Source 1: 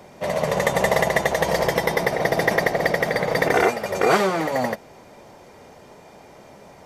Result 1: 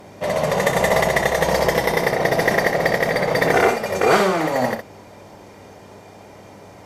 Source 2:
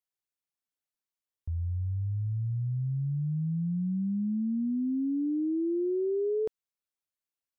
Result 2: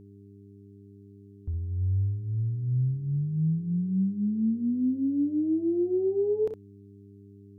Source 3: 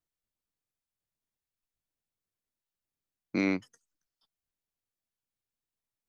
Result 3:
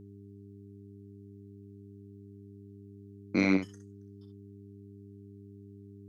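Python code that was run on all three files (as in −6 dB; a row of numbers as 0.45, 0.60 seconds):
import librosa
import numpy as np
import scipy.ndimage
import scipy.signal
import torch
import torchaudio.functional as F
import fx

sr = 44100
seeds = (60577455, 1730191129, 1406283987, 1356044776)

y = fx.cheby_harmonics(x, sr, harmonics=(2, 4, 5), levels_db=(-17, -21, -32), full_scale_db=-4.5)
y = fx.room_early_taps(y, sr, ms=(32, 63), db=(-12.5, -7.5))
y = fx.dmg_buzz(y, sr, base_hz=100.0, harmonics=4, level_db=-51.0, tilt_db=-3, odd_only=False)
y = F.gain(torch.from_numpy(y), 1.0).numpy()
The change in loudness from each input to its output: +2.5, +3.0, +2.0 LU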